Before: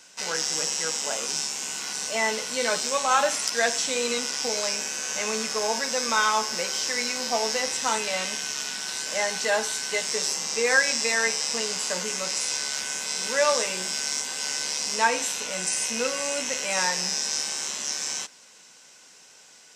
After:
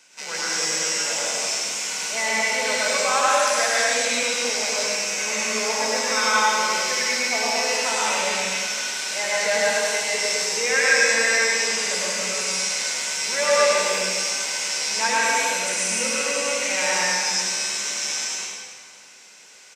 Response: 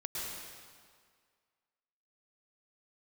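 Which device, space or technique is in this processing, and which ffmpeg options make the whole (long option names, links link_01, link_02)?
PA in a hall: -filter_complex "[0:a]highpass=frequency=170:poles=1,equalizer=frequency=2300:width_type=o:width=0.4:gain=7,aecho=1:1:102:0.531[link_01];[1:a]atrim=start_sample=2205[link_02];[link_01][link_02]afir=irnorm=-1:irlink=0"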